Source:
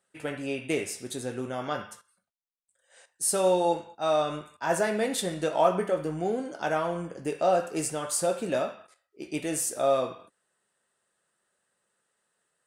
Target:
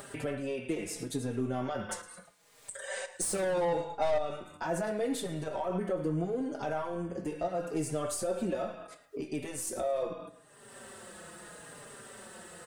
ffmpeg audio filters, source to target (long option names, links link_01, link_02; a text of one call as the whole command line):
ffmpeg -i in.wav -filter_complex "[0:a]alimiter=limit=-21.5dB:level=0:latency=1:release=81,asettb=1/sr,asplit=3[link_01][link_02][link_03];[link_01]atrim=end=1.894[link_04];[link_02]atrim=start=1.89:end=4.18,asetpts=PTS-STARTPTS,afade=type=in:duration=0.004:curve=qsin,afade=type=out:start_time=2.286:duration=0.004:curve=qsin,equalizer=frequency=125:width_type=o:width=1:gain=5,equalizer=frequency=500:width_type=o:width=1:gain=12,equalizer=frequency=1000:width_type=o:width=1:gain=7,equalizer=frequency=2000:width_type=o:width=1:gain=11,equalizer=frequency=4000:width_type=o:width=1:gain=6,equalizer=frequency=8000:width_type=o:width=1:gain=11[link_05];[link_03]atrim=start=4.176[link_06];[link_04][link_05]acrossfade=duration=0.004:curve1=hsin:curve2=qsin[link_07];[link_07][link_06]acrossfade=duration=0.004:curve1=qsin:curve2=hsin,aeval=exprs='(tanh(11.2*val(0)+0.2)-tanh(0.2))/11.2':channel_layout=same,tiltshelf=frequency=680:gain=4.5,acompressor=mode=upward:threshold=-33dB:ratio=2.5,aecho=1:1:111|222|333:0.106|0.0424|0.0169,acompressor=threshold=-42dB:ratio=2,asplit=2[link_08][link_09];[link_09]adelay=4.5,afreqshift=-0.76[link_10];[link_08][link_10]amix=inputs=2:normalize=1,volume=8.5dB" out.wav